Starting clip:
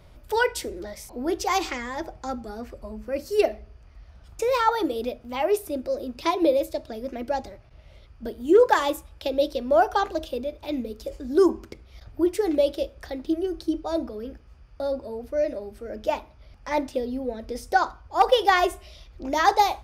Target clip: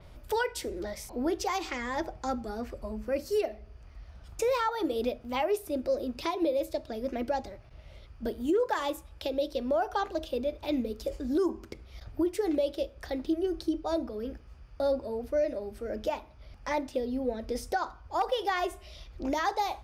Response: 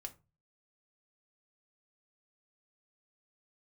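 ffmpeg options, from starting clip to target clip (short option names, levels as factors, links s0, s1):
-af "alimiter=limit=0.1:level=0:latency=1:release=373,adynamicequalizer=threshold=0.00224:dfrequency=6100:dqfactor=0.7:tfrequency=6100:tqfactor=0.7:attack=5:release=100:ratio=0.375:range=1.5:mode=cutabove:tftype=highshelf"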